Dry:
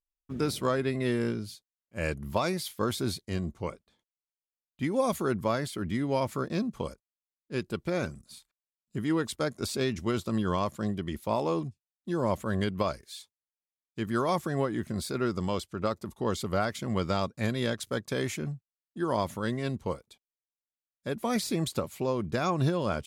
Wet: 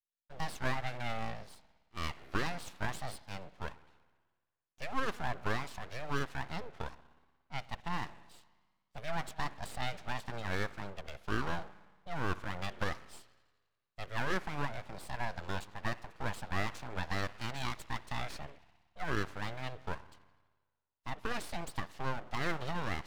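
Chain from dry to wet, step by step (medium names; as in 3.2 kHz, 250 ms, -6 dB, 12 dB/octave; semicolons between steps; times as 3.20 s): three-band isolator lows -22 dB, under 280 Hz, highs -21 dB, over 4.8 kHz; spring tank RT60 1.4 s, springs 59 ms, chirp 40 ms, DRR 16 dB; vibrato 0.7 Hz 97 cents; full-wave rectifier; trim -2.5 dB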